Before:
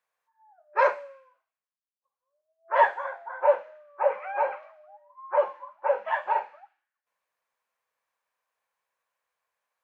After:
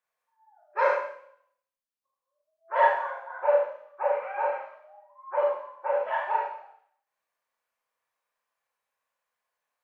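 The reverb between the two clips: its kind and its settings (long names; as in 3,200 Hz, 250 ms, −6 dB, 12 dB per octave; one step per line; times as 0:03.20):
four-comb reverb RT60 0.58 s, combs from 26 ms, DRR −2 dB
level −5 dB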